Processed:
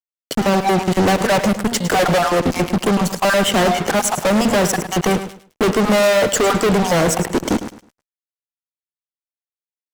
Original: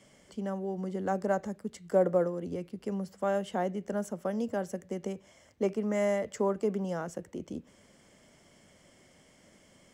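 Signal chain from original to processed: random spectral dropouts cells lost 29%; gate -56 dBFS, range -7 dB; HPF 180 Hz 6 dB/oct; de-hum 237.7 Hz, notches 19; in parallel at -3 dB: compressor, threshold -38 dBFS, peak gain reduction 15.5 dB; on the sum: fuzz box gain 46 dB, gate -51 dBFS; on a send: feedback echo 0.106 s, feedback 25%, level -11.5 dB

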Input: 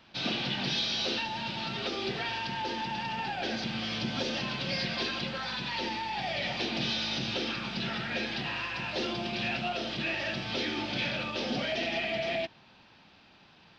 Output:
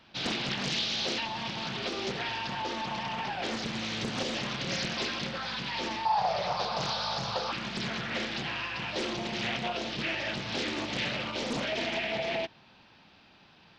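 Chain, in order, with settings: 6.05–7.52 EQ curve 190 Hz 0 dB, 290 Hz -28 dB, 470 Hz +3 dB, 700 Hz +7 dB, 1100 Hz +14 dB, 1900 Hz -7 dB, 3200 Hz -7 dB, 4600 Hz +4 dB, 6900 Hz -10 dB, 11000 Hz +9 dB; Doppler distortion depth 0.99 ms

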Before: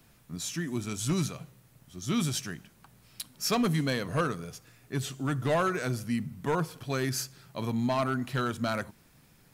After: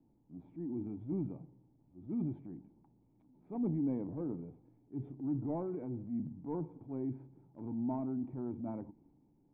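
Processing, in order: vocal tract filter u; transient shaper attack -7 dB, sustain +5 dB; gain +2 dB

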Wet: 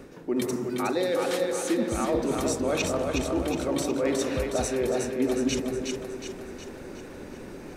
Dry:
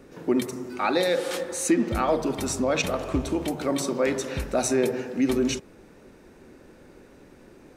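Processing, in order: dynamic EQ 430 Hz, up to +4 dB, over -31 dBFS, Q 0.92; reverse; compressor 4:1, threshold -35 dBFS, peak gain reduction 18 dB; reverse; split-band echo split 310 Hz, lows 0.22 s, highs 0.365 s, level -4 dB; gain +7.5 dB

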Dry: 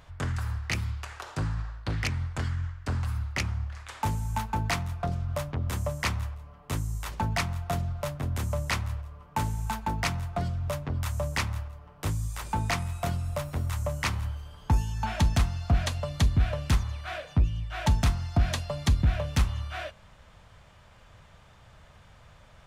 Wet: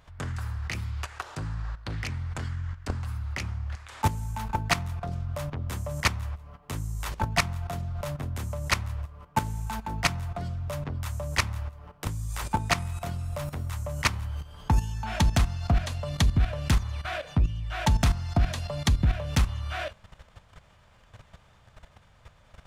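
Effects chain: level quantiser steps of 13 dB; gain +7 dB

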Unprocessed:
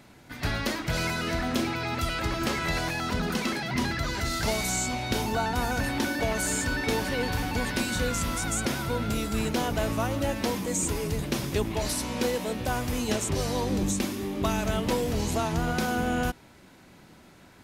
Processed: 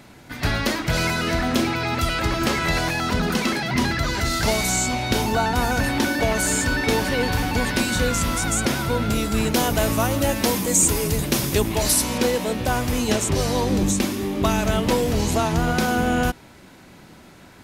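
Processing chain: 9.54–12.18 high shelf 6900 Hz +10.5 dB; gain +6.5 dB

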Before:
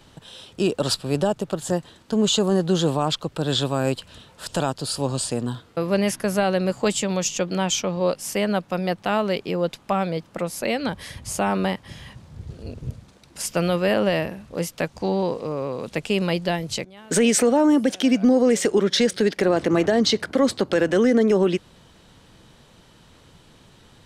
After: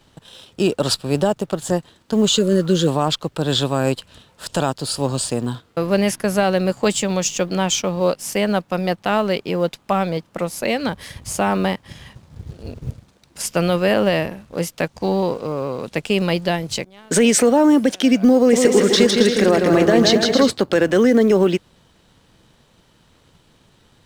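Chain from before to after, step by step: G.711 law mismatch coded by A; 2.34–2.85 spectral repair 610–1400 Hz before; 18.37–20.5 bouncing-ball echo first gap 0.16 s, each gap 0.7×, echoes 5; gain +4 dB

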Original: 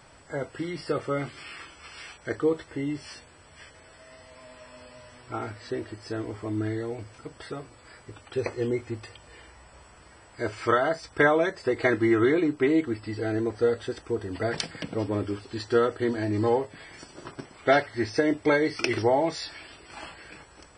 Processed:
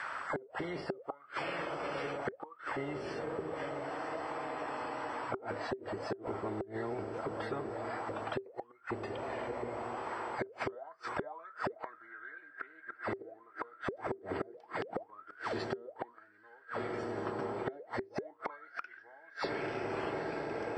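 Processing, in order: on a send: diffused feedback echo 0.952 s, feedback 61%, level -13 dB; on the sum: flipped gate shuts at -21 dBFS, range -42 dB; auto-wah 390–1700 Hz, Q 19, down, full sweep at -35 dBFS; spectral compressor 4:1; gain +9 dB

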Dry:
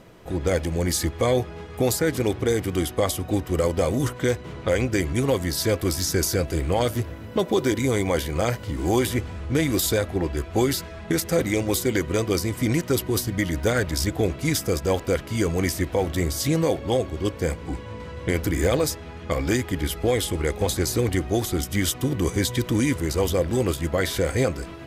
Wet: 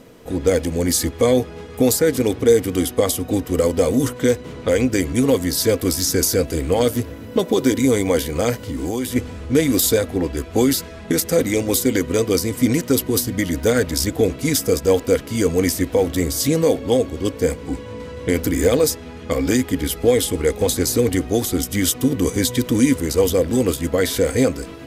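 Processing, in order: 8.56–9.16 compressor 6:1, threshold -25 dBFS, peak gain reduction 8.5 dB; high shelf 4000 Hz +8 dB; small resonant body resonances 260/460 Hz, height 11 dB, ringing for 60 ms

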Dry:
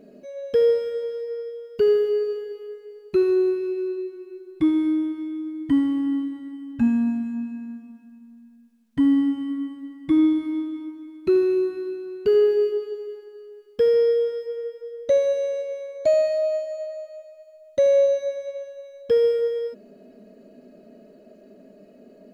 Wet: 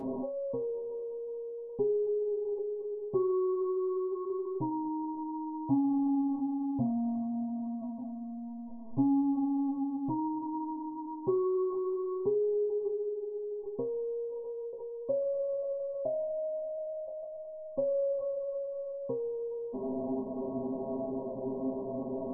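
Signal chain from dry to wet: power-law curve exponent 0.35; brick-wall FIR low-pass 1100 Hz; metallic resonator 130 Hz, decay 0.27 s, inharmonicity 0.002

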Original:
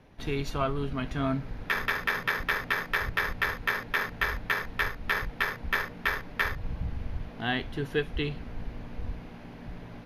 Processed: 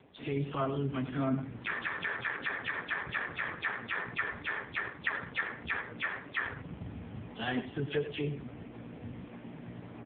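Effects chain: spectral delay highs early, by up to 0.128 s; flange 1.6 Hz, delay 2.3 ms, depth 6.6 ms, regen +75%; in parallel at -2.5 dB: limiter -30 dBFS, peak gain reduction 11 dB; on the sum: outdoor echo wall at 17 m, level -11 dB; reverse; upward compressor, threshold -38 dBFS; reverse; AMR-NB 5.15 kbps 8000 Hz

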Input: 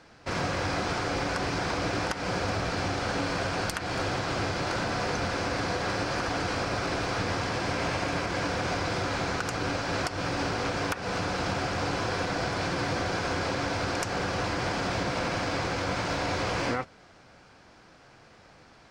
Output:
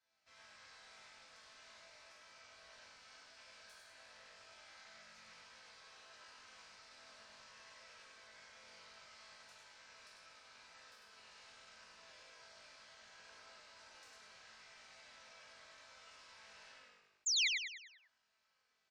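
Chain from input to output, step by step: bell 290 Hz +12.5 dB 0.27 oct; soft clip -25 dBFS, distortion -13 dB; HPF 74 Hz; passive tone stack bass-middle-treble 10-0-10; resonator bank A3 minor, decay 0.81 s; painted sound fall, 17.26–17.48, 1900–7500 Hz -35 dBFS; on a send: frequency-shifting echo 0.1 s, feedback 46%, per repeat -50 Hz, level -3.5 dB; on the sum: spectral gate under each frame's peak -30 dB strong; Doppler distortion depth 0.16 ms; gain +1.5 dB

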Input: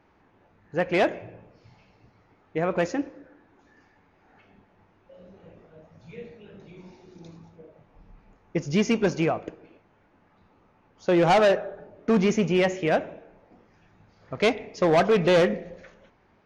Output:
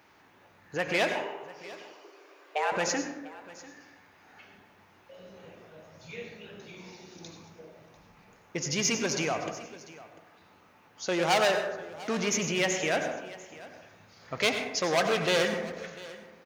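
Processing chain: low shelf 150 Hz +10 dB; 1.14–2.72 frequency shift +290 Hz; in parallel at -9 dB: soft clip -29.5 dBFS, distortion -4 dB; on the sum: HPF 63 Hz; limiter -18.5 dBFS, peak gain reduction 7.5 dB; tilt +4 dB/oct; on a send: echo 0.695 s -19 dB; on the sum: plate-style reverb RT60 0.79 s, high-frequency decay 0.45×, pre-delay 80 ms, DRR 6.5 dB

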